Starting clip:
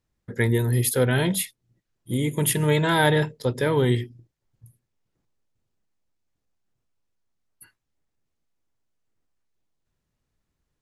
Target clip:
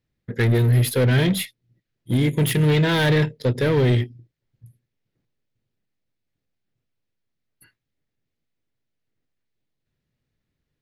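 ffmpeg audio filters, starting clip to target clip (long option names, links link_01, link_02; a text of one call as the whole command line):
ffmpeg -i in.wav -af "volume=20dB,asoftclip=hard,volume=-20dB,aeval=exprs='0.106*(cos(1*acos(clip(val(0)/0.106,-1,1)))-cos(1*PI/2))+0.00531*(cos(7*acos(clip(val(0)/0.106,-1,1)))-cos(7*PI/2))+0.00188*(cos(8*acos(clip(val(0)/0.106,-1,1)))-cos(8*PI/2))':channel_layout=same,equalizer=frequency=125:width_type=o:width=1:gain=7,equalizer=frequency=250:width_type=o:width=1:gain=4,equalizer=frequency=500:width_type=o:width=1:gain=4,equalizer=frequency=1000:width_type=o:width=1:gain=-4,equalizer=frequency=2000:width_type=o:width=1:gain=6,equalizer=frequency=4000:width_type=o:width=1:gain=5,equalizer=frequency=8000:width_type=o:width=1:gain=-6" out.wav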